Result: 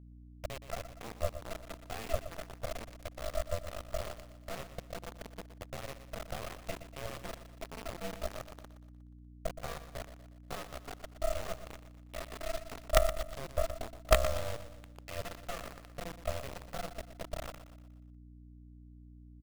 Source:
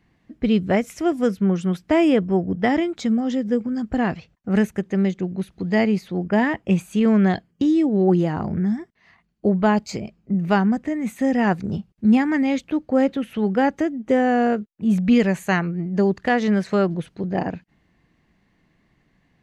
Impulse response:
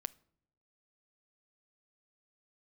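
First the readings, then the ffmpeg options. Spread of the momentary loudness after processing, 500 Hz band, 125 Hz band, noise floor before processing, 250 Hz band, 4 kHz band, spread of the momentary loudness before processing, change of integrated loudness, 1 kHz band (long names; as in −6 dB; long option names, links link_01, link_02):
19 LU, −15.0 dB, −17.5 dB, −65 dBFS, −33.0 dB, −7.5 dB, 8 LU, −18.5 dB, −15.5 dB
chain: -filter_complex "[0:a]lowpass=frequency=6100:width=0.5412,lowpass=frequency=6100:width=1.3066,bandreject=frequency=50:width_type=h:width=6,bandreject=frequency=100:width_type=h:width=6,bandreject=frequency=150:width_type=h:width=6,bandreject=frequency=200:width_type=h:width=6,bandreject=frequency=250:width_type=h:width=6,bandreject=frequency=300:width_type=h:width=6,bandreject=frequency=350:width_type=h:width=6,bandreject=frequency=400:width_type=h:width=6,adynamicequalizer=threshold=0.0112:dfrequency=1900:dqfactor=1.1:tfrequency=1900:tqfactor=1.1:attack=5:release=100:ratio=0.375:range=2:mode=cutabove:tftype=bell,acompressor=threshold=-23dB:ratio=4,afreqshift=-230,asplit=3[link_01][link_02][link_03];[link_01]bandpass=frequency=300:width_type=q:width=8,volume=0dB[link_04];[link_02]bandpass=frequency=870:width_type=q:width=8,volume=-6dB[link_05];[link_03]bandpass=frequency=2240:width_type=q:width=8,volume=-9dB[link_06];[link_04][link_05][link_06]amix=inputs=3:normalize=0,aeval=exprs='val(0)*sin(2*PI*340*n/s)':channel_layout=same,acrusher=bits=5:dc=4:mix=0:aa=0.000001,aeval=exprs='val(0)+0.001*(sin(2*PI*60*n/s)+sin(2*PI*2*60*n/s)/2+sin(2*PI*3*60*n/s)/3+sin(2*PI*4*60*n/s)/4+sin(2*PI*5*60*n/s)/5)':channel_layout=same,asplit=2[link_07][link_08];[link_08]aecho=0:1:120|240|360|480|600:0.251|0.118|0.0555|0.0261|0.0123[link_09];[link_07][link_09]amix=inputs=2:normalize=0,volume=8.5dB"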